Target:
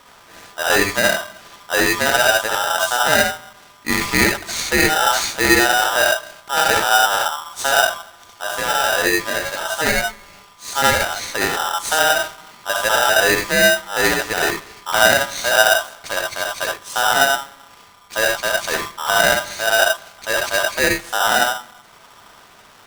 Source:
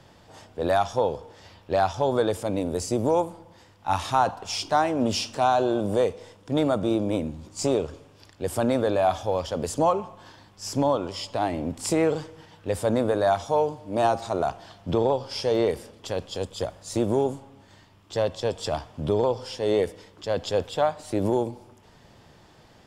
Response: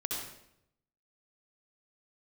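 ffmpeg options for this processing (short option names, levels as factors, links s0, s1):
-filter_complex "[0:a]asettb=1/sr,asplit=3[s0][s1][s2];[s0]atrim=end=8.444[s3];[s1]atrim=start=8.44:end=10.68,asetpts=PTS-STARTPTS,afade=t=in:d=0.004:c=qsin,afade=t=out:st=2.236:d=0.004:c=qsin,flanger=delay=18.5:depth=2.1:speed=1.1[s4];[s2]atrim=start=10.676[s5];[s3][s4]acrossfade=d=0.004:c1=hsin:c2=qsin[s6];[s6][s5]acrossfade=d=0.004:c1=qsin:c2=hsin[s7];[1:a]atrim=start_sample=2205,atrim=end_sample=3969[s8];[s7][s8]afir=irnorm=-1:irlink=0,aeval=exprs='val(0)*sgn(sin(2*PI*1100*n/s))':c=same,volume=1.88"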